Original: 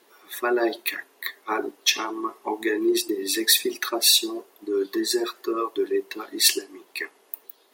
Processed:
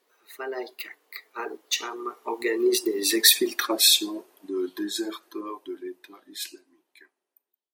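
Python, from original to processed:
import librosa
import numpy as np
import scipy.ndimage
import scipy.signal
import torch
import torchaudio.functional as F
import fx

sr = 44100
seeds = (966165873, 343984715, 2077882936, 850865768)

y = fx.fade_out_tail(x, sr, length_s=2.56)
y = fx.doppler_pass(y, sr, speed_mps=29, closest_m=21.0, pass_at_s=3.25)
y = y * librosa.db_to_amplitude(2.0)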